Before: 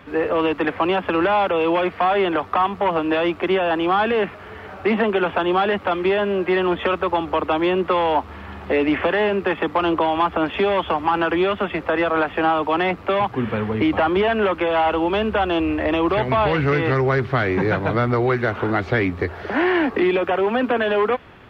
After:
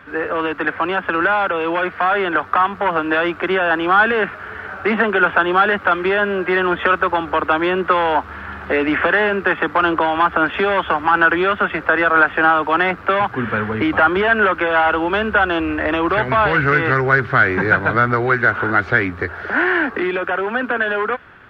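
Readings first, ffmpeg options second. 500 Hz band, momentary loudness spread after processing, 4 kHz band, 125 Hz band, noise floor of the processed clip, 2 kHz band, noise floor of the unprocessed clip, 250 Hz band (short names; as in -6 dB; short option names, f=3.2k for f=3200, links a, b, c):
0.0 dB, 7 LU, +1.0 dB, -0.5 dB, -35 dBFS, +9.5 dB, -38 dBFS, -0.5 dB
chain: -af "dynaudnorm=f=240:g=21:m=3.5dB,equalizer=f=1.5k:t=o:w=0.61:g=13.5,volume=-3dB"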